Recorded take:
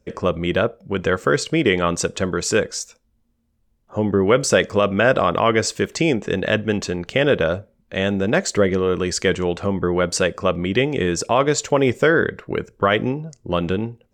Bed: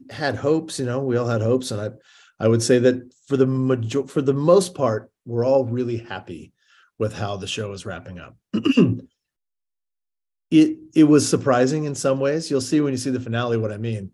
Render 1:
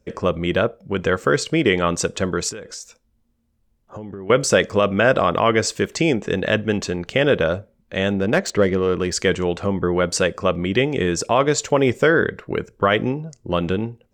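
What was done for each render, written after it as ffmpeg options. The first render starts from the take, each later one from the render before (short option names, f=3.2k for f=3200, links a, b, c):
-filter_complex "[0:a]asettb=1/sr,asplit=3[a][b][c];[a]atrim=end=2.494[d];[b]atrim=start=2.49:end=4.3,asetpts=PTS-STARTPTS,afade=t=in:d=0.004:c=qsin,afade=t=out:st=1.806:d=0.004:c=qsin,acompressor=threshold=-30dB:ratio=8:attack=3.2:release=140:knee=1:detection=peak[e];[c]atrim=start=4.296[f];[d][e]acrossfade=d=0.004:c1=hsin:c2=qsin[g];[g][f]acrossfade=d=0.004:c1=qsin:c2=hsin,asettb=1/sr,asplit=3[h][i][j];[h]atrim=end=8.134[k];[i]atrim=start=8.13:end=9.13,asetpts=PTS-STARTPTS,afade=t=in:d=0.004:c=qsin,afade=t=out:st=0.996:d=0.004:c=qsin,adynamicsmooth=sensitivity=2:basefreq=3.5k[l];[j]atrim=start=9.126[m];[k][l]acrossfade=d=0.004:c1=hsin:c2=qsin[n];[n][m]acrossfade=d=0.004:c1=qsin:c2=hsin"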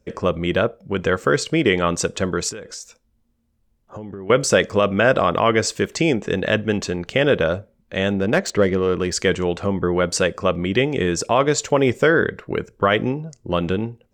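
-af anull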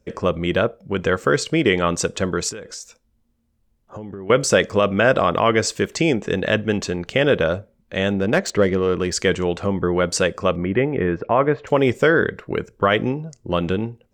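-filter_complex "[0:a]asettb=1/sr,asplit=3[a][b][c];[a]atrim=end=10.564[d];[b]atrim=start=10.56:end=11.67,asetpts=PTS-STARTPTS,afade=t=in:d=0.004:c=qsin,afade=t=out:st=1.106:d=0.004:c=qsin,lowpass=f=2.1k:w=0.5412,lowpass=f=2.1k:w=1.3066[e];[c]atrim=start=11.666[f];[d][e]acrossfade=d=0.004:c1=hsin:c2=qsin[g];[g][f]acrossfade=d=0.004:c1=qsin:c2=hsin"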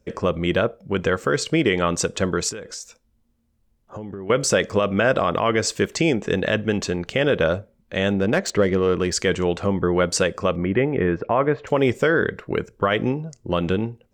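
-af "alimiter=limit=-8.5dB:level=0:latency=1:release=113"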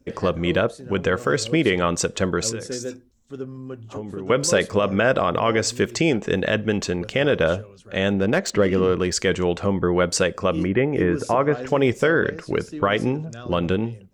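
-filter_complex "[1:a]volume=-15dB[a];[0:a][a]amix=inputs=2:normalize=0"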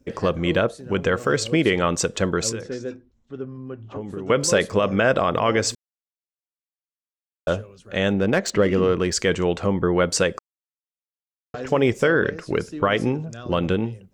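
-filter_complex "[0:a]asettb=1/sr,asplit=3[a][b][c];[a]atrim=end=2.614[d];[b]atrim=start=2.61:end=4.01,asetpts=PTS-STARTPTS,afade=t=in:d=0.004:c=qsin,afade=t=out:st=1.396:d=0.004:c=qsin,lowpass=3k[e];[c]atrim=start=4.006[f];[d][e]acrossfade=d=0.004:c1=hsin:c2=qsin[g];[g][f]acrossfade=d=0.004:c1=qsin:c2=hsin,asplit=5[h][i][j][k][l];[h]atrim=end=5.75,asetpts=PTS-STARTPTS,afade=t=out:st=5.746:d=0.004:c=hsin[m];[i]atrim=start=5.75:end=7.47,asetpts=PTS-STARTPTS,volume=0[n];[j]atrim=start=7.47:end=10.39,asetpts=PTS-STARTPTS,afade=t=in:d=0.004:c=hsin,afade=t=out:st=2.916:d=0.004:c=hsin[o];[k]atrim=start=10.39:end=11.54,asetpts=PTS-STARTPTS,volume=0[p];[l]atrim=start=11.54,asetpts=PTS-STARTPTS,afade=t=in:d=0.004:c=hsin[q];[m][n][o][p][q]concat=n=5:v=0:a=1"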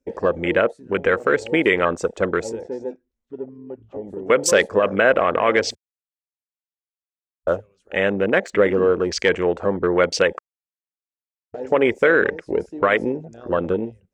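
-af "afwtdn=0.0355,equalizer=f=125:t=o:w=1:g=-12,equalizer=f=500:t=o:w=1:g=4,equalizer=f=2k:t=o:w=1:g=6,equalizer=f=8k:t=o:w=1:g=4"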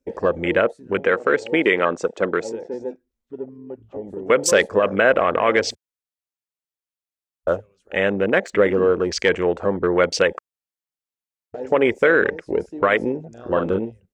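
-filter_complex "[0:a]asettb=1/sr,asplit=3[a][b][c];[a]atrim=end=0.994[d];[b]atrim=start=0.99:end=2.74,asetpts=PTS-STARTPTS,afade=t=in:d=0.004:c=qsin,afade=t=out:st=1.746:d=0.004:c=qsin,highpass=170,lowpass=6.9k[e];[c]atrim=start=2.736[f];[d][e]acrossfade=d=0.004:c1=hsin:c2=qsin[g];[g][f]acrossfade=d=0.004:c1=qsin:c2=hsin,asplit=3[h][i][j];[h]afade=t=out:st=13.36:d=0.02[k];[i]asplit=2[l][m];[m]adelay=42,volume=-5dB[n];[l][n]amix=inputs=2:normalize=0,afade=t=in:st=13.36:d=0.02,afade=t=out:st=13.78:d=0.02[o];[j]afade=t=in:st=13.78:d=0.02[p];[k][o][p]amix=inputs=3:normalize=0"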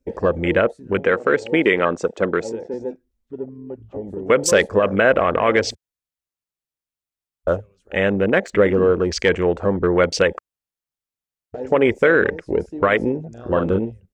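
-af "lowshelf=f=150:g=11"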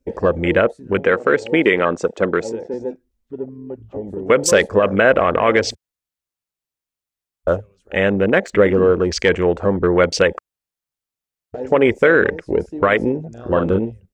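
-af "volume=2dB,alimiter=limit=-2dB:level=0:latency=1"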